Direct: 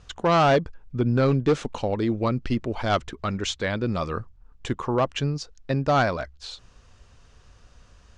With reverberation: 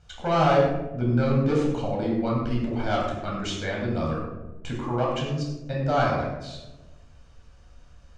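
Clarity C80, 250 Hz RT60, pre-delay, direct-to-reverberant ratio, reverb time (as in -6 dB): 4.0 dB, 1.5 s, 13 ms, -3.5 dB, 1.1 s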